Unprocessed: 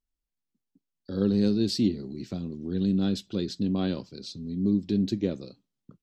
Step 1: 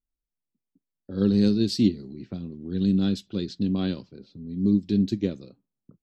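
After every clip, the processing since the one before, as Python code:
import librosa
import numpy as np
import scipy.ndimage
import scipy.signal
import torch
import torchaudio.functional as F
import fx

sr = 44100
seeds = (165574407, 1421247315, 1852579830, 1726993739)

y = fx.dynamic_eq(x, sr, hz=700.0, q=0.76, threshold_db=-41.0, ratio=4.0, max_db=-5)
y = fx.env_lowpass(y, sr, base_hz=660.0, full_db=-25.0)
y = fx.upward_expand(y, sr, threshold_db=-35.0, expansion=1.5)
y = y * 10.0 ** (5.5 / 20.0)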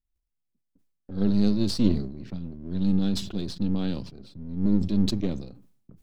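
y = np.where(x < 0.0, 10.0 ** (-7.0 / 20.0) * x, x)
y = fx.low_shelf(y, sr, hz=170.0, db=10.5)
y = fx.sustainer(y, sr, db_per_s=83.0)
y = y * 10.0 ** (-3.0 / 20.0)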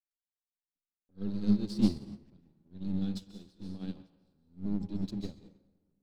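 y = fx.leveller(x, sr, passes=1)
y = fx.rev_plate(y, sr, seeds[0], rt60_s=1.6, hf_ratio=0.6, predelay_ms=120, drr_db=2.5)
y = fx.upward_expand(y, sr, threshold_db=-31.0, expansion=2.5)
y = y * 10.0 ** (-7.0 / 20.0)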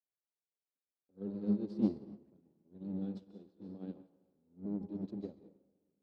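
y = fx.bandpass_q(x, sr, hz=450.0, q=1.2)
y = y * 10.0 ** (1.5 / 20.0)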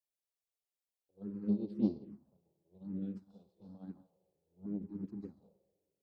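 y = fx.env_phaser(x, sr, low_hz=230.0, high_hz=1700.0, full_db=-31.0)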